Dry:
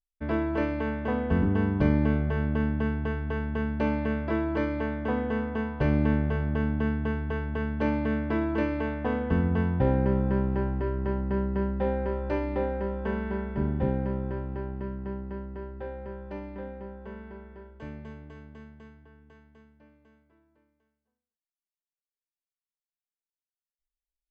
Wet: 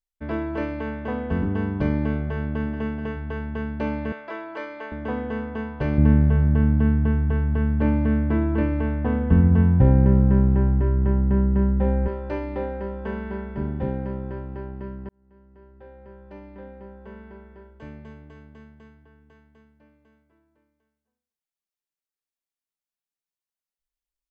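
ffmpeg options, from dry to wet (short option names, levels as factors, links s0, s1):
-filter_complex "[0:a]asplit=2[s0][s1];[s1]afade=t=in:st=2.23:d=0.01,afade=t=out:st=2.73:d=0.01,aecho=0:1:430|860:0.354813|0.053222[s2];[s0][s2]amix=inputs=2:normalize=0,asettb=1/sr,asplit=3[s3][s4][s5];[s3]atrim=end=4.124[s6];[s4]atrim=start=4.12:end=4.92,asetpts=PTS-STARTPTS,afade=t=in:d=0.004:c=qsin,afade=t=out:st=0.796:d=0.004:c=qsin,highpass=580[s7];[s5]atrim=start=4.916[s8];[s6][s7]acrossfade=d=0.004:c1=hsin:c2=qsin[s9];[s9][s8]acrossfade=d=0.004:c1=qsin:c2=hsin,asettb=1/sr,asplit=3[s10][s11][s12];[s10]atrim=end=5.984[s13];[s11]atrim=start=5.98:end=12.08,asetpts=PTS-STARTPTS,afade=t=in:d=0.004:c=qsin,afade=t=out:st=6.096:d=0.004:c=qsin,bass=f=250:g=11,treble=f=4000:g=-13[s14];[s12]atrim=start=12.076[s15];[s13][s14]acrossfade=d=0.004:c1=hsin:c2=qsin[s16];[s16][s15]acrossfade=d=0.004:c1=qsin:c2=hsin,asplit=2[s17][s18];[s17]atrim=end=15.09,asetpts=PTS-STARTPTS,afade=t=out:st=15.086:d=0.004:c=hsin[s19];[s18]atrim=start=15.09,asetpts=PTS-STARTPTS,afade=t=in:d=2.11[s20];[s19][s20]concat=n=2:v=0:a=1"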